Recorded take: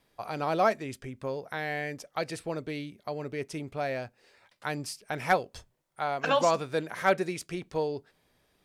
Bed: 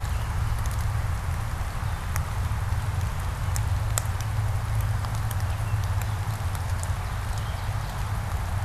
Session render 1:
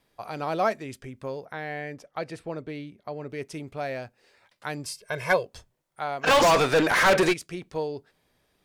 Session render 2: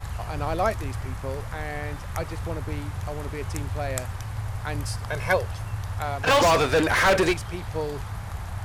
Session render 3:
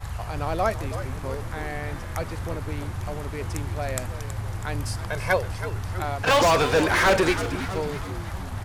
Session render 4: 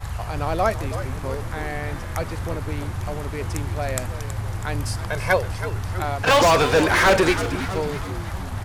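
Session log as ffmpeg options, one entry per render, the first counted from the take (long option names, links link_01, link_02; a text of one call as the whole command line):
ffmpeg -i in.wav -filter_complex "[0:a]asettb=1/sr,asplit=3[link_01][link_02][link_03];[link_01]atrim=end=1.454[link_04];[link_02]atrim=start=1.45:end=3.3,asetpts=PTS-STARTPTS,afade=type=in:duration=0.004:curve=qsin,afade=type=out:start_time=1.846:duration=0.004:curve=qsin,highshelf=frequency=3700:gain=-10.5[link_05];[link_03]atrim=start=3.296[link_06];[link_04][link_05]acrossfade=duration=0.004:curve1=hsin:curve2=qsin[link_07];[link_07][link_06]acrossfade=duration=0.004:curve1=qsin:curve2=hsin,asettb=1/sr,asplit=3[link_08][link_09][link_10];[link_08]atrim=end=4.854[link_11];[link_09]atrim=start=4.85:end=5.46,asetpts=PTS-STARTPTS,afade=type=in:duration=0.004:curve=qsin,afade=type=out:start_time=0.606:duration=0.004:curve=qsin,aecho=1:1:1.9:1,atrim=end_sample=26901[link_12];[link_10]atrim=start=5.456[link_13];[link_11][link_12]acrossfade=duration=0.004:curve1=hsin:curve2=qsin[link_14];[link_14][link_13]acrossfade=duration=0.004:curve1=qsin:curve2=hsin,asplit=3[link_15][link_16][link_17];[link_15]afade=type=out:start_time=6.26:duration=0.02[link_18];[link_16]asplit=2[link_19][link_20];[link_20]highpass=frequency=720:poles=1,volume=32dB,asoftclip=type=tanh:threshold=-12dB[link_21];[link_19][link_21]amix=inputs=2:normalize=0,lowpass=frequency=4400:poles=1,volume=-6dB,afade=type=in:start_time=6.26:duration=0.02,afade=type=out:start_time=7.32:duration=0.02[link_22];[link_17]afade=type=in:start_time=7.32:duration=0.02[link_23];[link_18][link_22][link_23]amix=inputs=3:normalize=0" out.wav
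ffmpeg -i in.wav -i bed.wav -filter_complex "[1:a]volume=-5dB[link_01];[0:a][link_01]amix=inputs=2:normalize=0" out.wav
ffmpeg -i in.wav -filter_complex "[0:a]asplit=8[link_01][link_02][link_03][link_04][link_05][link_06][link_07][link_08];[link_02]adelay=324,afreqshift=-98,volume=-11.5dB[link_09];[link_03]adelay=648,afreqshift=-196,volume=-16.1dB[link_10];[link_04]adelay=972,afreqshift=-294,volume=-20.7dB[link_11];[link_05]adelay=1296,afreqshift=-392,volume=-25.2dB[link_12];[link_06]adelay=1620,afreqshift=-490,volume=-29.8dB[link_13];[link_07]adelay=1944,afreqshift=-588,volume=-34.4dB[link_14];[link_08]adelay=2268,afreqshift=-686,volume=-39dB[link_15];[link_01][link_09][link_10][link_11][link_12][link_13][link_14][link_15]amix=inputs=8:normalize=0" out.wav
ffmpeg -i in.wav -af "volume=3dB" out.wav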